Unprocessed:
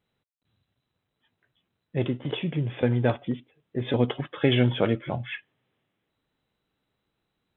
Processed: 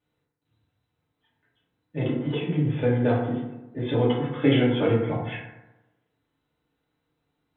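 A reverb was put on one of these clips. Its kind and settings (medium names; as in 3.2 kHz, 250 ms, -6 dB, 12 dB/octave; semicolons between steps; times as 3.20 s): FDN reverb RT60 1 s, low-frequency decay 1×, high-frequency decay 0.4×, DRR -6 dB; trim -6 dB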